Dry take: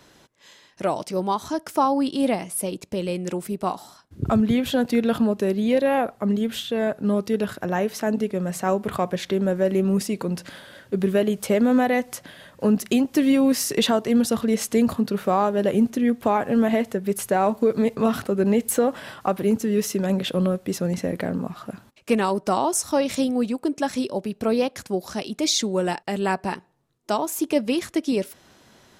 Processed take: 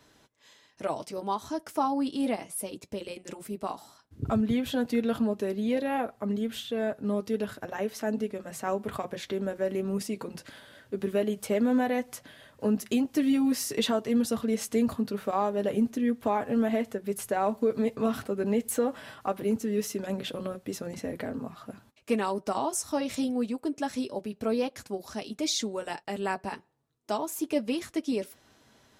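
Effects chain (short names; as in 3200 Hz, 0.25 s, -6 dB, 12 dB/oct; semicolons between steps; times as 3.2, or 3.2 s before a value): notch comb 180 Hz; gain -6 dB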